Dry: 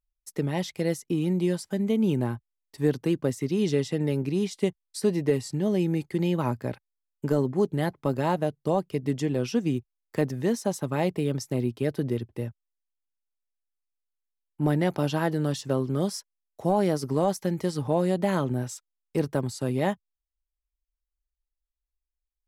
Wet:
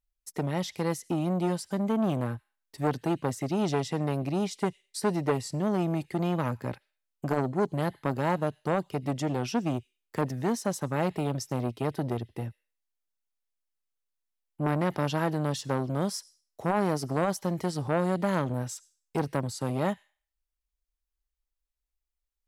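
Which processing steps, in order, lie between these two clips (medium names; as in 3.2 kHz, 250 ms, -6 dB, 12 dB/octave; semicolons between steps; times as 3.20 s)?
on a send at -21.5 dB: Butterworth band-pass 5.6 kHz, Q 0.55 + reverberation RT60 0.45 s, pre-delay 73 ms; on the sum: transformer saturation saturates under 730 Hz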